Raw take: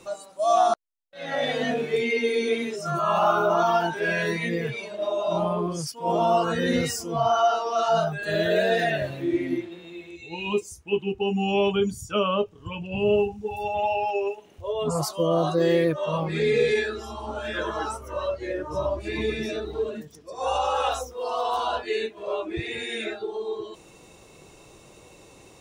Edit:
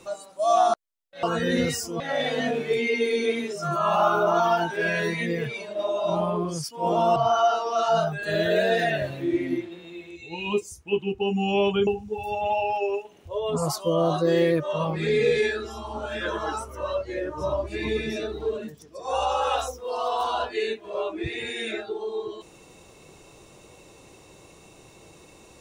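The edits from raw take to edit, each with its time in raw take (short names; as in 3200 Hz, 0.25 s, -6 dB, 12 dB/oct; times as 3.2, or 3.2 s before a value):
6.39–7.16 move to 1.23
11.87–13.2 cut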